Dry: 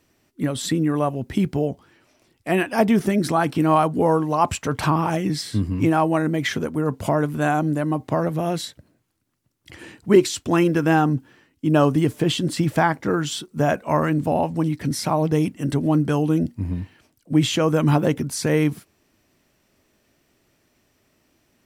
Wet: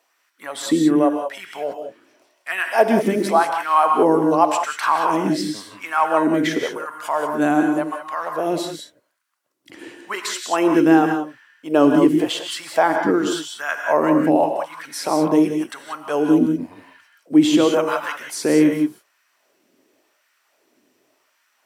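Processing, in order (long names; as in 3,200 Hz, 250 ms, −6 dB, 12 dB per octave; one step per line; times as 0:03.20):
auto-filter high-pass sine 0.9 Hz 260–1,500 Hz
reverb whose tail is shaped and stops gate 210 ms rising, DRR 4 dB
level −1 dB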